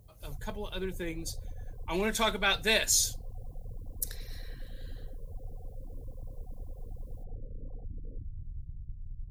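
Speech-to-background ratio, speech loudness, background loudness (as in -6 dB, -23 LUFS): 17.0 dB, -30.0 LUFS, -47.0 LUFS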